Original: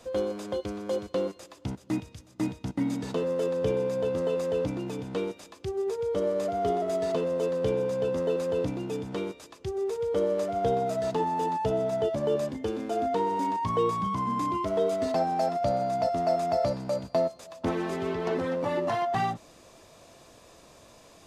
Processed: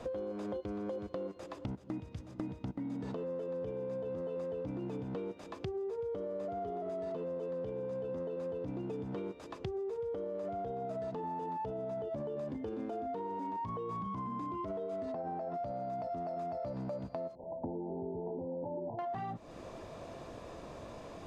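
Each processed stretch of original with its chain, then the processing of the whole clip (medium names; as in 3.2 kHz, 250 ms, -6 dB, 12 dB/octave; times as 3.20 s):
15.13–15.54 s: low-pass 1.5 kHz 6 dB/octave + doubling 21 ms -9 dB
17.35–18.99 s: band-stop 690 Hz, Q 18 + compression 2:1, threshold -36 dBFS + brick-wall FIR low-pass 1 kHz
whole clip: low-pass 1.1 kHz 6 dB/octave; peak limiter -27.5 dBFS; compression, threshold -46 dBFS; trim +8.5 dB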